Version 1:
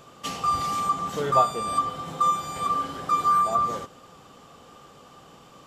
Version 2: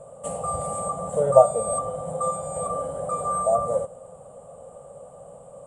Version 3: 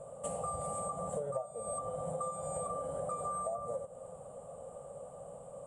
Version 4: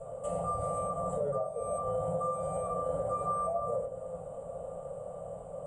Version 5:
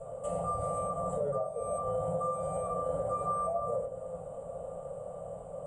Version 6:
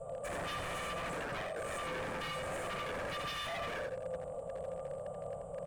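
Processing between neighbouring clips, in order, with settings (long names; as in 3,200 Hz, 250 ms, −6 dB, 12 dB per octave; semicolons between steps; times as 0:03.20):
drawn EQ curve 170 Hz 0 dB, 340 Hz −16 dB, 560 Hz +15 dB, 860 Hz −3 dB, 1,700 Hz −17 dB, 3,800 Hz −24 dB, 5,700 Hz −28 dB, 8,700 Hz +14 dB, 13,000 Hz −30 dB; level +3 dB
downward compressor 20 to 1, threshold −30 dBFS, peak gain reduction 23 dB; level −4 dB
brickwall limiter −31 dBFS, peak gain reduction 5.5 dB; convolution reverb RT60 0.40 s, pre-delay 3 ms, DRR −7 dB; level −5.5 dB
no processing that can be heard
wave folding −34 dBFS; single-tap delay 84 ms −6 dB; level −1.5 dB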